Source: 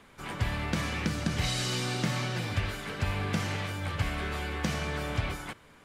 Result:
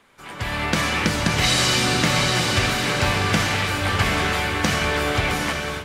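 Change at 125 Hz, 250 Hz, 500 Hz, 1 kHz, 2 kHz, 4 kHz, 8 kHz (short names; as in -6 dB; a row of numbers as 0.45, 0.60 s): +7.0, +9.0, +12.0, +13.5, +14.0, +14.0, +14.0 dB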